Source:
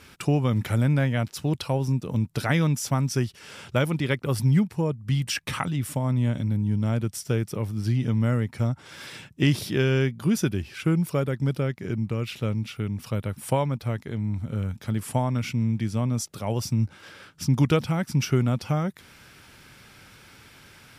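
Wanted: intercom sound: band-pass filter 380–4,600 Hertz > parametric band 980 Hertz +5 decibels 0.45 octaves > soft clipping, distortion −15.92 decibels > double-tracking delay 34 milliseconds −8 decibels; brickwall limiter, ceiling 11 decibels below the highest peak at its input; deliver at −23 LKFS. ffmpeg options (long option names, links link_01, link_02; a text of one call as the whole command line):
ffmpeg -i in.wav -filter_complex "[0:a]alimiter=limit=-20dB:level=0:latency=1,highpass=380,lowpass=4600,equalizer=frequency=980:width_type=o:width=0.45:gain=5,asoftclip=threshold=-25.5dB,asplit=2[link_01][link_02];[link_02]adelay=34,volume=-8dB[link_03];[link_01][link_03]amix=inputs=2:normalize=0,volume=14.5dB" out.wav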